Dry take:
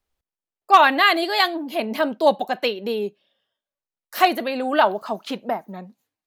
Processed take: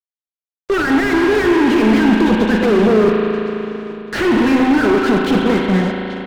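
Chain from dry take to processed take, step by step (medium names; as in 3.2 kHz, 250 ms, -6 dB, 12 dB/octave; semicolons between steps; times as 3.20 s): FFT band-reject 510–1300 Hz; low-pass that closes with the level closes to 2.1 kHz, closed at -22 dBFS; in parallel at -2 dB: compressor with a negative ratio -29 dBFS; on the sum: modulation noise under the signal 21 dB; fuzz box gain 35 dB, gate -40 dBFS; distance through air 120 m; on a send: feedback delay 833 ms, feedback 36%, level -23 dB; on the sum: spring tank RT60 3.3 s, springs 37 ms, chirp 35 ms, DRR 3 dB; slew-rate limiter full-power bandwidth 160 Hz; trim +1.5 dB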